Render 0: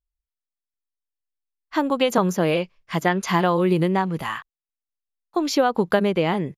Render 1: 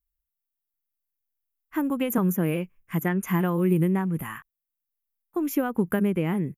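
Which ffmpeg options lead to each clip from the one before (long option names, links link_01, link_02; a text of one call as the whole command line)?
ffmpeg -i in.wav -af "firequalizer=gain_entry='entry(240,0);entry(610,-13);entry(1500,-7);entry(2500,-8);entry(4300,-28);entry(6400,-10);entry(9100,1);entry(13000,12)':delay=0.05:min_phase=1" out.wav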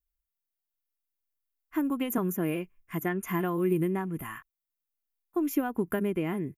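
ffmpeg -i in.wav -af "aecho=1:1:2.9:0.4,volume=-4dB" out.wav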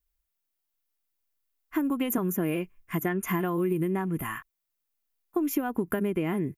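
ffmpeg -i in.wav -af "acompressor=threshold=-29dB:ratio=6,volume=5.5dB" out.wav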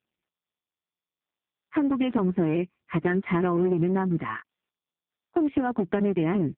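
ffmpeg -i in.wav -af "aeval=exprs='clip(val(0),-1,0.0473)':channel_layout=same,volume=5dB" -ar 8000 -c:a libopencore_amrnb -b:a 5150 out.amr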